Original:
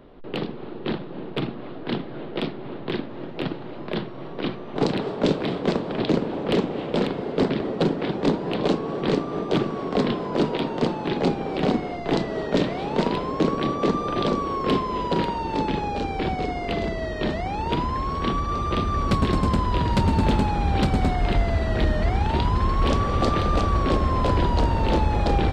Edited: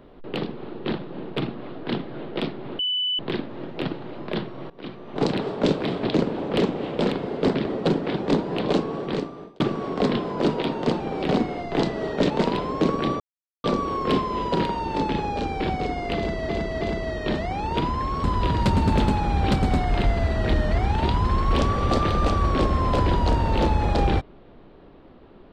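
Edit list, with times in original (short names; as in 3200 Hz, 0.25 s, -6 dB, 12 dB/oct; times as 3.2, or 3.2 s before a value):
2.79 add tone 2990 Hz -21.5 dBFS 0.40 s
4.3–4.88 fade in, from -18.5 dB
5.61–5.96 cut
8.82–9.55 fade out
10.95–11.34 cut
12.64–12.89 cut
13.79–14.23 mute
16.76–17.08 loop, 3 plays
18.19–19.55 cut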